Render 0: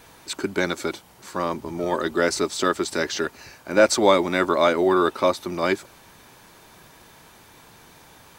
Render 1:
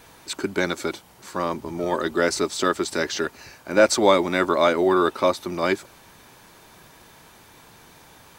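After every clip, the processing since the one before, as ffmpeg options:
-af anull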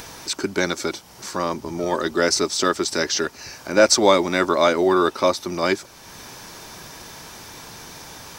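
-filter_complex "[0:a]equalizer=f=5.5k:t=o:w=0.54:g=9.5,asplit=2[a][b];[b]acompressor=mode=upward:threshold=-24dB:ratio=2.5,volume=-1.5dB[c];[a][c]amix=inputs=2:normalize=0,volume=-4dB"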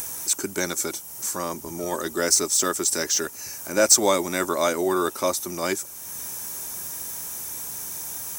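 -af "aexciter=amount=3.9:drive=9.9:freq=6.5k,volume=-5.5dB"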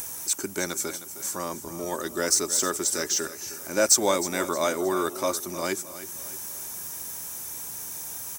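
-af "aecho=1:1:311|622|933|1244:0.2|0.0838|0.0352|0.0148,volume=-3dB"

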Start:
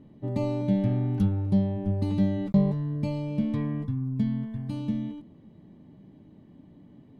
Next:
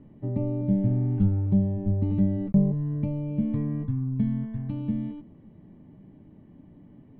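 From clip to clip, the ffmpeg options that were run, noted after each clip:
-filter_complex "[0:a]lowpass=f=2.8k:w=0.5412,lowpass=f=2.8k:w=1.3066,lowshelf=f=74:g=7.5,acrossover=split=600[a][b];[b]acompressor=threshold=-53dB:ratio=6[c];[a][c]amix=inputs=2:normalize=0"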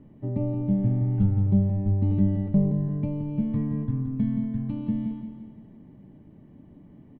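-af "aecho=1:1:172|344|516|688|860|1032:0.398|0.203|0.104|0.0528|0.0269|0.0137"

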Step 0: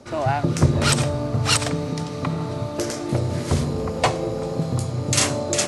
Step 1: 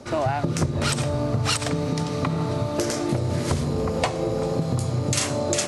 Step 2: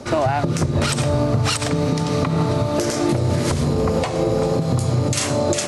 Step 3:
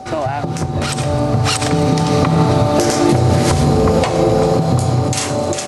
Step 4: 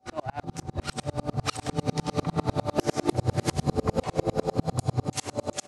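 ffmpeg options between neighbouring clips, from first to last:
-af "acompressor=threshold=-23dB:ratio=10,volume=3.5dB"
-af "alimiter=limit=-16.5dB:level=0:latency=1:release=136,volume=7dB"
-filter_complex "[0:a]aeval=exprs='val(0)+0.0355*sin(2*PI*760*n/s)':c=same,dynaudnorm=f=400:g=7:m=11.5dB,asplit=7[a][b][c][d][e][f][g];[b]adelay=260,afreqshift=140,volume=-18dB[h];[c]adelay=520,afreqshift=280,volume=-22dB[i];[d]adelay=780,afreqshift=420,volume=-26dB[j];[e]adelay=1040,afreqshift=560,volume=-30dB[k];[f]adelay=1300,afreqshift=700,volume=-34.1dB[l];[g]adelay=1560,afreqshift=840,volume=-38.1dB[m];[a][h][i][j][k][l][m]amix=inputs=7:normalize=0,volume=-1dB"
-af "aeval=exprs='val(0)*pow(10,-37*if(lt(mod(-10*n/s,1),2*abs(-10)/1000),1-mod(-10*n/s,1)/(2*abs(-10)/1000),(mod(-10*n/s,1)-2*abs(-10)/1000)/(1-2*abs(-10)/1000))/20)':c=same,volume=-5.5dB"

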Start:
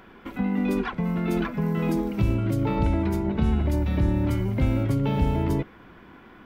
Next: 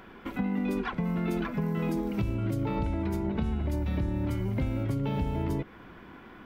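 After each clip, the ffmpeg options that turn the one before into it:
-af "acompressor=threshold=-26dB:ratio=6"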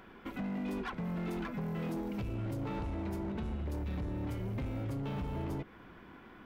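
-af "asoftclip=type=hard:threshold=-28.5dB,volume=-5dB"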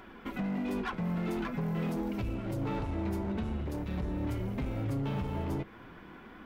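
-af "flanger=delay=2.8:depth=7.9:regen=-46:speed=0.46:shape=triangular,volume=7.5dB"

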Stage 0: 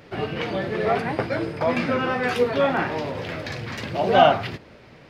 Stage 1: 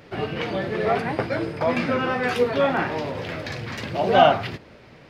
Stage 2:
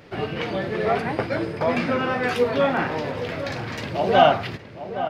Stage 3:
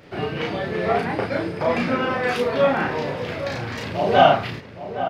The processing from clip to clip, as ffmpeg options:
-af anull
-filter_complex "[0:a]asplit=2[a][b];[b]adelay=816.3,volume=-11dB,highshelf=f=4k:g=-18.4[c];[a][c]amix=inputs=2:normalize=0"
-filter_complex "[0:a]asplit=2[a][b];[b]adelay=34,volume=-2dB[c];[a][c]amix=inputs=2:normalize=0,volume=-1dB"

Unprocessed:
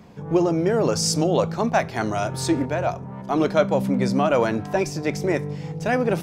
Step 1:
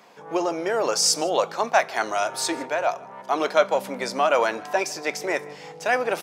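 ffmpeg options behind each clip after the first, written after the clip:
-af "highpass=640,aecho=1:1:155:0.0708,volume=3.5dB"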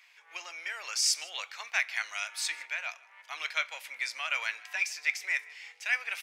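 -af "highpass=f=2.2k:t=q:w=3.1,volume=-7.5dB"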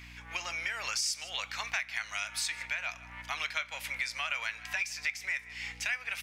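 -af "aeval=exprs='val(0)+0.00112*(sin(2*PI*60*n/s)+sin(2*PI*2*60*n/s)/2+sin(2*PI*3*60*n/s)/3+sin(2*PI*4*60*n/s)/4+sin(2*PI*5*60*n/s)/5)':c=same,acompressor=threshold=-41dB:ratio=4,volume=8.5dB"

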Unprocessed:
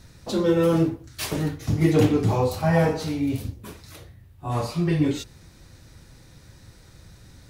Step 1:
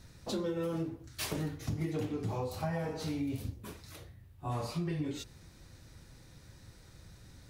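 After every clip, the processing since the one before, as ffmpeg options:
-af "acompressor=threshold=-25dB:ratio=16,volume=-6dB"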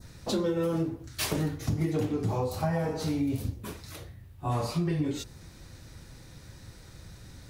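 -af "adynamicequalizer=threshold=0.00141:dfrequency=2700:dqfactor=0.96:tfrequency=2700:tqfactor=0.96:attack=5:release=100:ratio=0.375:range=2:mode=cutabove:tftype=bell,volume=6.5dB"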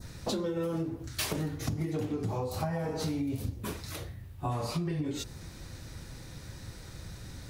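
-af "acompressor=threshold=-33dB:ratio=6,volume=3.5dB"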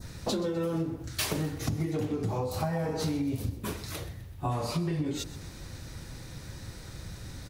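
-af "aecho=1:1:127|254|381|508:0.158|0.0745|0.035|0.0165,volume=2dB"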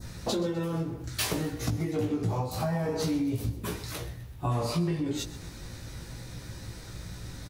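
-filter_complex "[0:a]asplit=2[a][b];[b]adelay=17,volume=-5dB[c];[a][c]amix=inputs=2:normalize=0"

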